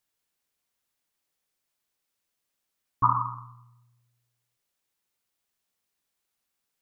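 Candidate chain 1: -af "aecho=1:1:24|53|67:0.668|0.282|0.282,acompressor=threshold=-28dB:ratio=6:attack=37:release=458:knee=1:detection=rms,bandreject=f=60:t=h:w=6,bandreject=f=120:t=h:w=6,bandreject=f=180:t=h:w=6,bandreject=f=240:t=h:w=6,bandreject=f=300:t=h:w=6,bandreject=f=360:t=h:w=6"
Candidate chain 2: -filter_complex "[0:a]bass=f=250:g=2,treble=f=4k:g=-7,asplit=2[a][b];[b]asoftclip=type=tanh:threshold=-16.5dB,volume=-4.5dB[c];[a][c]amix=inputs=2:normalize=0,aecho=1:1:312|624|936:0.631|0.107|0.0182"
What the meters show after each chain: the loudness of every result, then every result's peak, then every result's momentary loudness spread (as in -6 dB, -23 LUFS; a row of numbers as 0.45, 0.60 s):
-35.0, -24.0 LUFS; -16.0, -6.5 dBFS; 16, 13 LU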